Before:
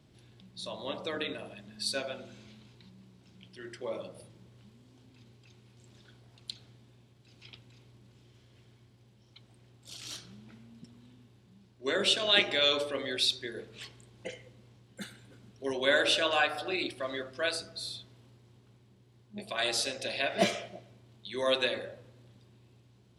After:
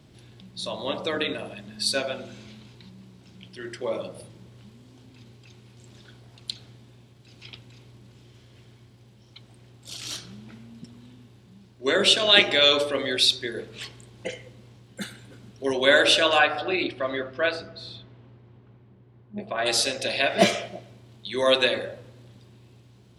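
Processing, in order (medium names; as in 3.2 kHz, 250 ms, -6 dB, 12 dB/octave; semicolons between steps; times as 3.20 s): 16.38–19.65 s: low-pass 3.7 kHz -> 1.5 kHz 12 dB/octave; trim +8 dB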